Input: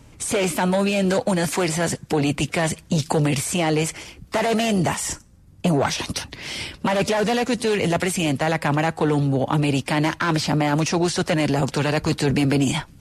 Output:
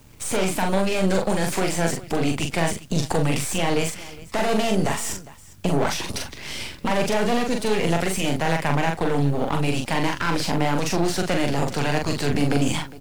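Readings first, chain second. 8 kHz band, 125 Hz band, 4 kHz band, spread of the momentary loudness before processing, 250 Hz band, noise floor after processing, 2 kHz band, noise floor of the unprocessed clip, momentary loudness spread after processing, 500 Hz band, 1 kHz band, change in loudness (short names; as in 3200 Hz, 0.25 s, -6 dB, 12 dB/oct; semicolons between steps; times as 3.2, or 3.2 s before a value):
-2.0 dB, -2.5 dB, -1.5 dB, 6 LU, -2.5 dB, -44 dBFS, -1.5 dB, -49 dBFS, 6 LU, -1.5 dB, -1.0 dB, -2.0 dB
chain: half-wave gain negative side -12 dB; tapped delay 42/406 ms -4/-19 dB; requantised 10-bit, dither triangular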